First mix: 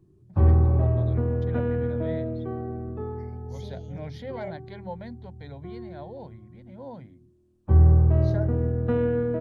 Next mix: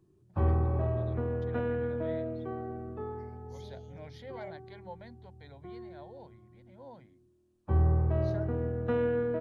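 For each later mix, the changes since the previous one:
speech −5.5 dB
master: add low-shelf EQ 360 Hz −10 dB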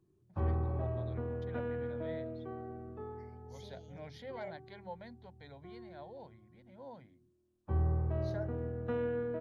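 background −6.0 dB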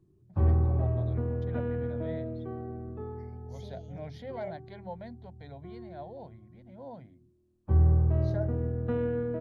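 speech: add parametric band 680 Hz +7.5 dB 0.31 octaves
master: add low-shelf EQ 360 Hz +10 dB

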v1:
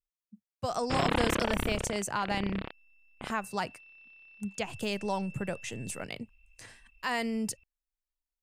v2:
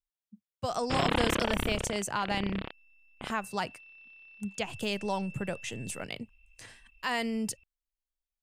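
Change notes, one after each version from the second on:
master: add parametric band 3,200 Hz +3.5 dB 0.5 octaves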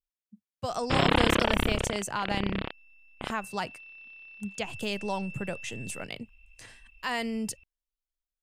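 background +5.0 dB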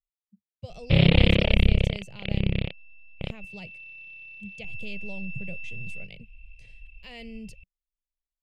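background +11.5 dB
master: add drawn EQ curve 180 Hz 0 dB, 260 Hz −15 dB, 550 Hz −8 dB, 1,000 Hz −26 dB, 1,600 Hz −25 dB, 2,300 Hz −6 dB, 4,800 Hz −12 dB, 7,500 Hz −20 dB

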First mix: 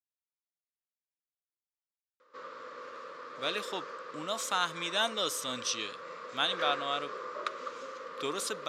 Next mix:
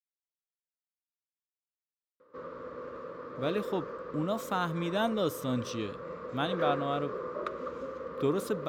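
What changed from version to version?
master: remove meter weighting curve ITU-R 468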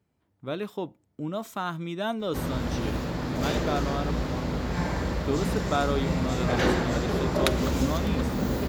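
speech: entry −2.95 s
background: remove pair of resonant band-passes 770 Hz, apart 1.2 octaves

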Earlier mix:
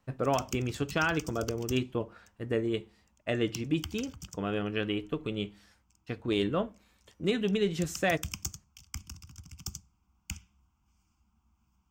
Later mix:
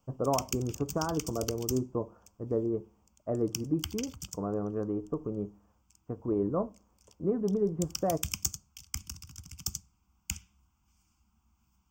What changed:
speech: add Chebyshev low-pass filter 1,100 Hz, order 4
master: add high-shelf EQ 4,500 Hz +8 dB

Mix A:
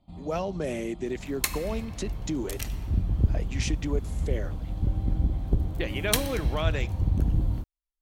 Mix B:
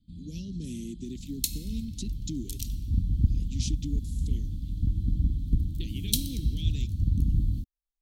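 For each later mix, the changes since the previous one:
master: add elliptic band-stop filter 260–3,600 Hz, stop band 70 dB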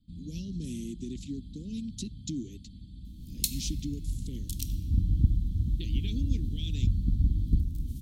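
second sound: entry +2.00 s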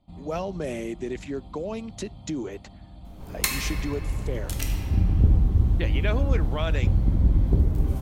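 second sound: send +11.0 dB
master: remove elliptic band-stop filter 260–3,600 Hz, stop band 70 dB

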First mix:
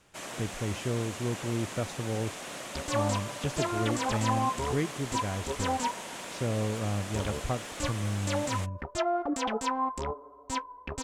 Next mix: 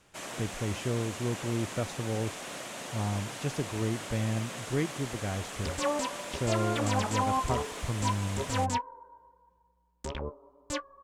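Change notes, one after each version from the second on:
second sound: entry +2.90 s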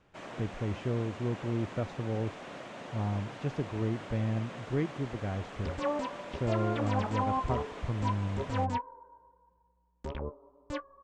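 master: add head-to-tape spacing loss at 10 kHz 26 dB

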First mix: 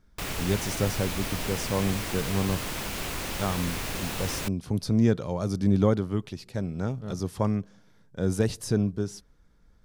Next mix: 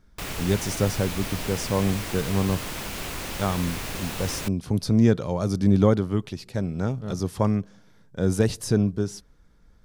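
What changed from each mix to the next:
speech +3.5 dB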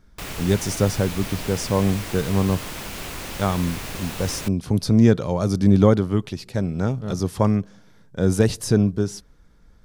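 speech +3.5 dB

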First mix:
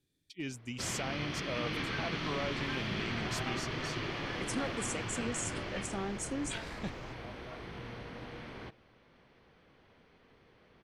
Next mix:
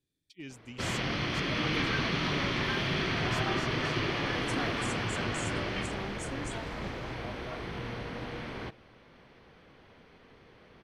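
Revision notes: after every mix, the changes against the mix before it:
speech −5.0 dB
first sound +6.5 dB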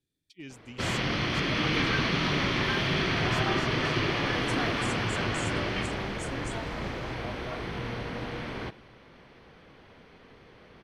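reverb: on, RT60 1.8 s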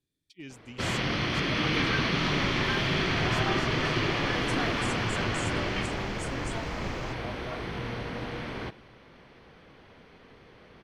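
second sound +8.0 dB

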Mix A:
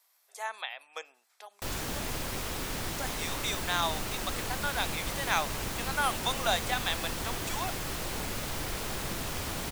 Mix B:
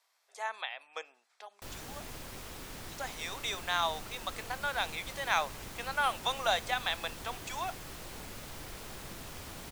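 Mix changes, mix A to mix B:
speech: add high-frequency loss of the air 61 metres
background −10.0 dB

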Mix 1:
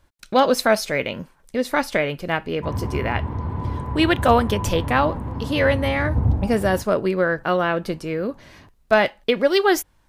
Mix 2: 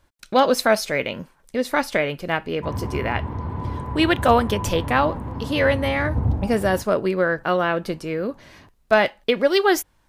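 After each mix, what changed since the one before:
master: add low-shelf EQ 160 Hz −3 dB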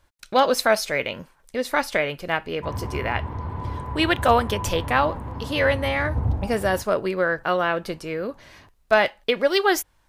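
master: add parametric band 220 Hz −5.5 dB 1.9 octaves

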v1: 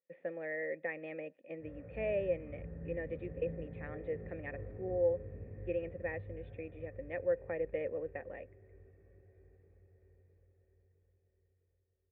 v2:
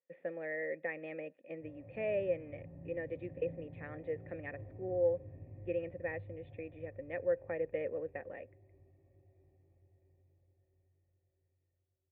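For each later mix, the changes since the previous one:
background: add phaser with its sweep stopped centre 300 Hz, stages 8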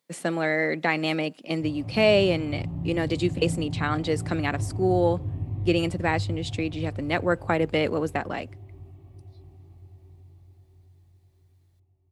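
speech +4.5 dB
master: remove formant resonators in series e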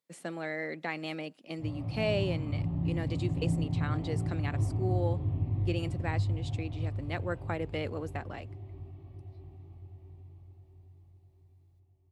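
speech −11.5 dB

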